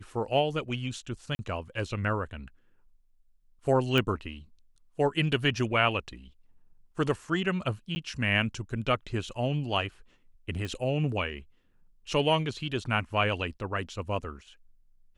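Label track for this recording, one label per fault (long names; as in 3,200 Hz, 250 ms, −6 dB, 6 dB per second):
1.350000	1.390000	drop-out 40 ms
3.980000	3.980000	click −14 dBFS
7.950000	7.960000	drop-out 10 ms
10.650000	10.650000	click −23 dBFS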